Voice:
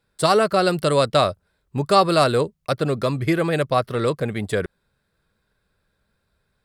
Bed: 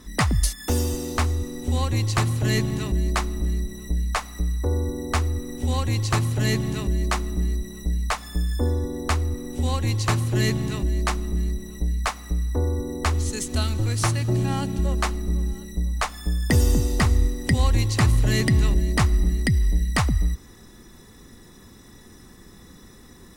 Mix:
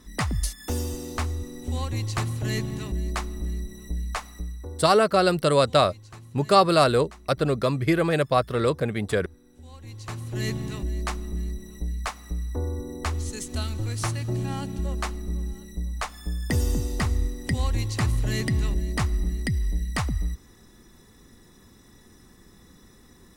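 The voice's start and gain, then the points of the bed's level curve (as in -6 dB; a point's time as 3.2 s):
4.60 s, -1.5 dB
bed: 4.28 s -5.5 dB
5.15 s -23 dB
9.64 s -23 dB
10.5 s -5.5 dB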